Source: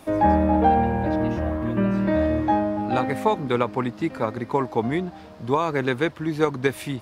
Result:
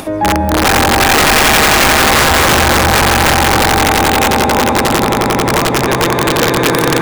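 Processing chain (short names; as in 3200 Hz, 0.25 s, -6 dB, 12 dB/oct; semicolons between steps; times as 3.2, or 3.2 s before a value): swelling echo 89 ms, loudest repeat 8, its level -4 dB; upward compressor, threshold -21 dBFS; wrapped overs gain 9 dB; gain +5 dB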